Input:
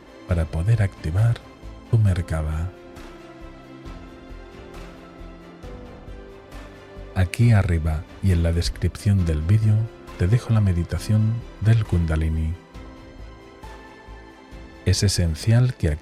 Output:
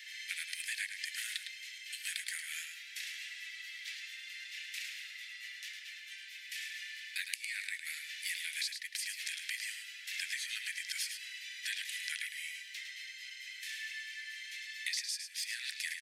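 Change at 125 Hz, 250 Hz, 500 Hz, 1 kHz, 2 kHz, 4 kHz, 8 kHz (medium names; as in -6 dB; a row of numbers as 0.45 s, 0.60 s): under -40 dB, under -40 dB, under -40 dB, under -25 dB, -1.5 dB, -2.0 dB, -4.0 dB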